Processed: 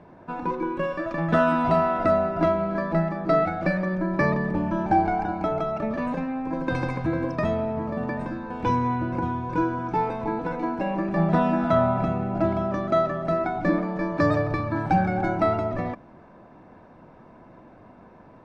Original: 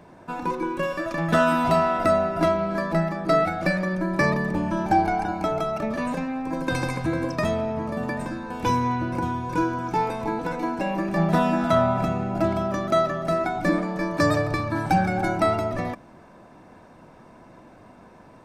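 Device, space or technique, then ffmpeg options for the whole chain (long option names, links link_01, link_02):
through cloth: -filter_complex "[0:a]asettb=1/sr,asplit=3[link_01][link_02][link_03];[link_01]atrim=end=13.564[link_04];[link_02]atrim=start=13.56:end=14.33,asetpts=PTS-STARTPTS,afade=type=in:duration=0.004:curve=qsin,afade=type=out:start_time=0.766:duration=0.004:curve=qsin,lowpass=frequency=8400:width=0.5412,lowpass=frequency=8400:width=1.3066[link_05];[link_03]atrim=start=14.326[link_06];[link_04][link_05]acrossfade=duration=0.004:curve1=hsin:curve2=qsin[link_07];[link_07][link_06]acrossfade=duration=0.004:curve1=qsin:curve2=hsin,lowpass=6600,highshelf=frequency=3800:gain=-15.5"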